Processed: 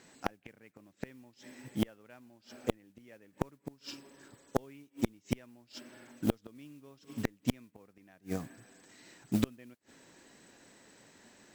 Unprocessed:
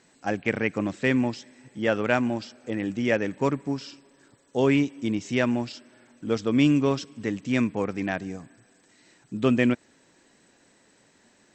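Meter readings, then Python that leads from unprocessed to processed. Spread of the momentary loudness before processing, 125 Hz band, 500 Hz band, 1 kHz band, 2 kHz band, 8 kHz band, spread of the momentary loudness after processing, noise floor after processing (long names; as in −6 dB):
13 LU, −11.0 dB, −15.0 dB, −12.0 dB, −18.5 dB, −6.0 dB, 23 LU, −72 dBFS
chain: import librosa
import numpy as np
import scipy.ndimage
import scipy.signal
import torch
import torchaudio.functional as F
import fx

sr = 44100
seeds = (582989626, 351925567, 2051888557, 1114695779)

y = fx.mod_noise(x, sr, seeds[0], snr_db=19)
y = fx.gate_flip(y, sr, shuts_db=-20.0, range_db=-33)
y = fx.cheby_harmonics(y, sr, harmonics=(3,), levels_db=(-14,), full_scale_db=-18.0)
y = y * 10.0 ** (9.0 / 20.0)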